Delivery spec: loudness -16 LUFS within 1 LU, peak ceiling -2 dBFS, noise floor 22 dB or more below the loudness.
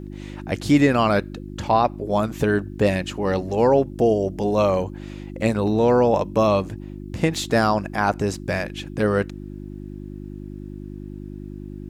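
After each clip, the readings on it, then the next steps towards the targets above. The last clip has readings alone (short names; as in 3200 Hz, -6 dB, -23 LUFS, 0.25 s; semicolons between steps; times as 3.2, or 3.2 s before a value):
hum 50 Hz; harmonics up to 350 Hz; hum level -32 dBFS; loudness -21.0 LUFS; peak -6.0 dBFS; loudness target -16.0 LUFS
-> de-hum 50 Hz, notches 7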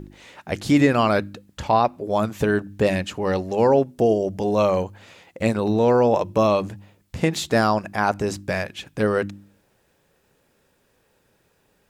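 hum none; loudness -21.5 LUFS; peak -6.5 dBFS; loudness target -16.0 LUFS
-> gain +5.5 dB; limiter -2 dBFS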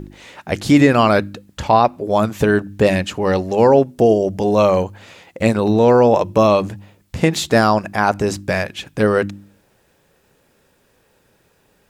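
loudness -16.0 LUFS; peak -2.0 dBFS; noise floor -60 dBFS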